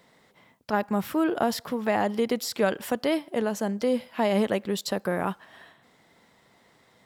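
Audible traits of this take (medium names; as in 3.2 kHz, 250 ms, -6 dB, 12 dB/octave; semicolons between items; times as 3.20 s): noise floor -62 dBFS; spectral tilt -4.0 dB/octave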